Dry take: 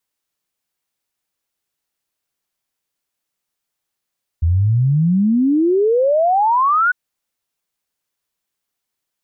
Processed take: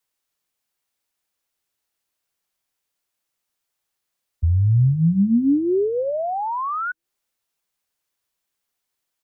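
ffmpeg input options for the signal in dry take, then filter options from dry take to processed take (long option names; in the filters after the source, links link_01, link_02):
-f lavfi -i "aevalsrc='0.266*clip(min(t,2.5-t)/0.01,0,1)*sin(2*PI*79*2.5/log(1500/79)*(exp(log(1500/79)*t/2.5)-1))':duration=2.5:sample_rate=44100"
-filter_complex "[0:a]acrossover=split=100|340[link_01][link_02][link_03];[link_01]aecho=1:1:338|676|1014|1352:0.0794|0.0405|0.0207|0.0105[link_04];[link_02]flanger=delay=16:depth=5.7:speed=0.83[link_05];[link_03]acompressor=threshold=-24dB:ratio=10[link_06];[link_04][link_05][link_06]amix=inputs=3:normalize=0"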